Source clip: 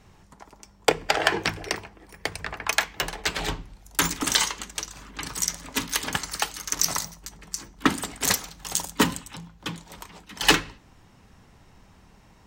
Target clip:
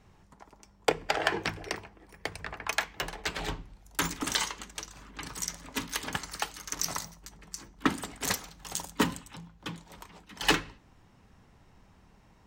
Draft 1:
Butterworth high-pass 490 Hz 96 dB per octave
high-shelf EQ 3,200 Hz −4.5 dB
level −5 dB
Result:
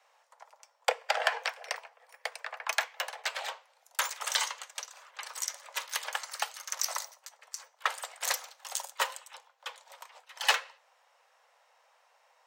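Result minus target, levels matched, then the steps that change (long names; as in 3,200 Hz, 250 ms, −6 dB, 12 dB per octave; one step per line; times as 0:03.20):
500 Hz band −3.0 dB
remove: Butterworth high-pass 490 Hz 96 dB per octave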